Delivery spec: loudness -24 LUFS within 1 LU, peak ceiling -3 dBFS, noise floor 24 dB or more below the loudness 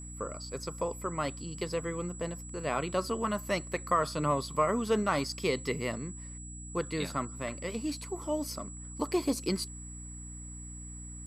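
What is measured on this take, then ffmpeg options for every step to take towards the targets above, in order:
hum 60 Hz; highest harmonic 300 Hz; hum level -43 dBFS; steady tone 7.8 kHz; tone level -46 dBFS; loudness -33.5 LUFS; peak level -15.0 dBFS; loudness target -24.0 LUFS
-> -af "bandreject=f=60:t=h:w=4,bandreject=f=120:t=h:w=4,bandreject=f=180:t=h:w=4,bandreject=f=240:t=h:w=4,bandreject=f=300:t=h:w=4"
-af "bandreject=f=7800:w=30"
-af "volume=2.99"

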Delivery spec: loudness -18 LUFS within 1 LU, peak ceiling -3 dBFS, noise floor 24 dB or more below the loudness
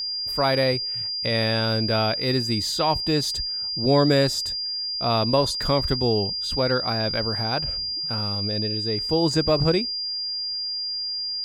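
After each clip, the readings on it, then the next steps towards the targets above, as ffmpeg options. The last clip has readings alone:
steady tone 4.8 kHz; tone level -26 dBFS; loudness -22.5 LUFS; peak level -7.0 dBFS; loudness target -18.0 LUFS
-> -af "bandreject=f=4800:w=30"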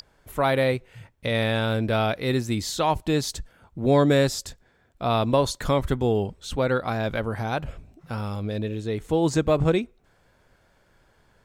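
steady tone not found; loudness -24.5 LUFS; peak level -8.0 dBFS; loudness target -18.0 LUFS
-> -af "volume=2.11,alimiter=limit=0.708:level=0:latency=1"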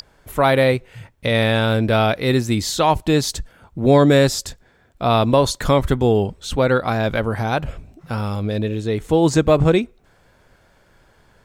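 loudness -18.5 LUFS; peak level -3.0 dBFS; noise floor -56 dBFS

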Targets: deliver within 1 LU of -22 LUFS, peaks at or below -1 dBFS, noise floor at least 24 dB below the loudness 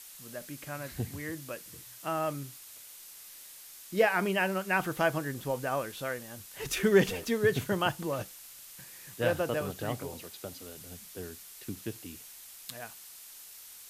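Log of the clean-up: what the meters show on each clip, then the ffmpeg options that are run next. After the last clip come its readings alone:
noise floor -50 dBFS; noise floor target -56 dBFS; loudness -32.0 LUFS; peak level -11.5 dBFS; loudness target -22.0 LUFS
-> -af "afftdn=nr=6:nf=-50"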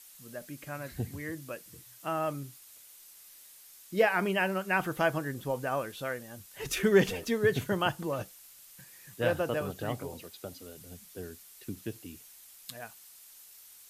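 noise floor -54 dBFS; noise floor target -56 dBFS
-> -af "afftdn=nr=6:nf=-54"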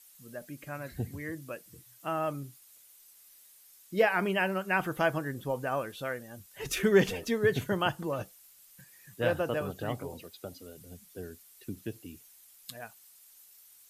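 noise floor -58 dBFS; loudness -31.5 LUFS; peak level -11.5 dBFS; loudness target -22.0 LUFS
-> -af "volume=2.99"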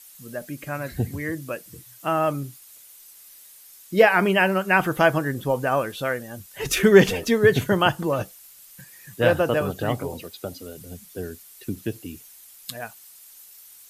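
loudness -22.0 LUFS; peak level -2.0 dBFS; noise floor -48 dBFS

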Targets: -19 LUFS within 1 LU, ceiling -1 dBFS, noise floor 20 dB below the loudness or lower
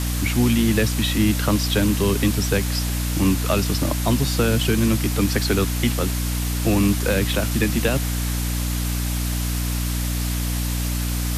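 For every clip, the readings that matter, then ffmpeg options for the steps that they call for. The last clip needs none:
hum 60 Hz; highest harmonic 300 Hz; hum level -21 dBFS; noise floor -24 dBFS; noise floor target -42 dBFS; loudness -21.5 LUFS; peak level -6.5 dBFS; loudness target -19.0 LUFS
-> -af "bandreject=f=60:t=h:w=4,bandreject=f=120:t=h:w=4,bandreject=f=180:t=h:w=4,bandreject=f=240:t=h:w=4,bandreject=f=300:t=h:w=4"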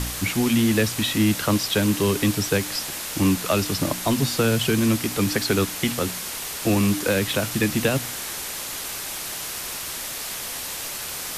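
hum not found; noise floor -32 dBFS; noise floor target -43 dBFS
-> -af "afftdn=nr=11:nf=-32"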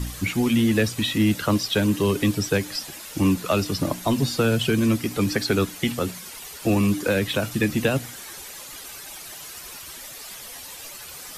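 noise floor -40 dBFS; noise floor target -43 dBFS
-> -af "afftdn=nr=6:nf=-40"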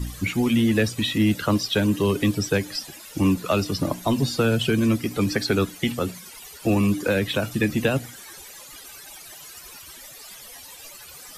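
noise floor -43 dBFS; loudness -23.0 LUFS; peak level -8.5 dBFS; loudness target -19.0 LUFS
-> -af "volume=1.58"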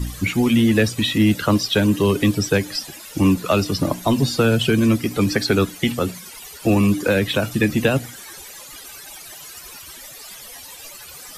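loudness -19.0 LUFS; peak level -4.5 dBFS; noise floor -39 dBFS

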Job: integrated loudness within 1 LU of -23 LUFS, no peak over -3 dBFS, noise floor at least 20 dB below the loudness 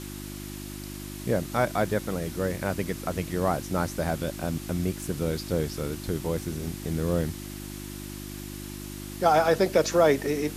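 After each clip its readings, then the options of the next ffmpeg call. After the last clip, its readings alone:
hum 50 Hz; highest harmonic 350 Hz; hum level -36 dBFS; noise floor -38 dBFS; noise floor target -49 dBFS; loudness -28.5 LUFS; peak level -9.5 dBFS; loudness target -23.0 LUFS
-> -af "bandreject=f=50:t=h:w=4,bandreject=f=100:t=h:w=4,bandreject=f=150:t=h:w=4,bandreject=f=200:t=h:w=4,bandreject=f=250:t=h:w=4,bandreject=f=300:t=h:w=4,bandreject=f=350:t=h:w=4"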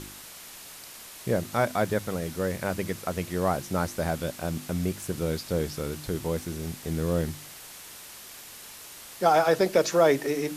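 hum not found; noise floor -45 dBFS; noise floor target -48 dBFS
-> -af "afftdn=nr=6:nf=-45"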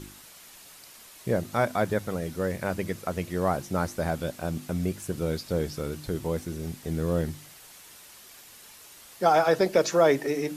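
noise floor -50 dBFS; loudness -27.5 LUFS; peak level -9.5 dBFS; loudness target -23.0 LUFS
-> -af "volume=1.68"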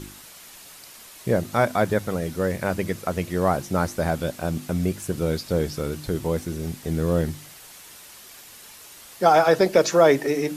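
loudness -23.0 LUFS; peak level -5.0 dBFS; noise floor -45 dBFS

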